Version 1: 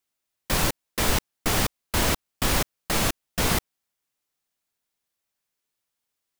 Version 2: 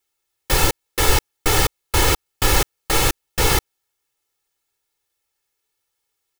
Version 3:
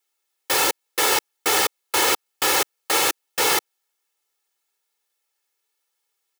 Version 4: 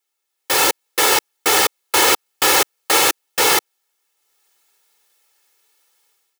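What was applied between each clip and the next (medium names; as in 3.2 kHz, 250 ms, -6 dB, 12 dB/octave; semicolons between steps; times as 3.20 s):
comb 2.3 ms, depth 86%; trim +3.5 dB
high-pass 400 Hz 12 dB/octave
level rider gain up to 15 dB; trim -1 dB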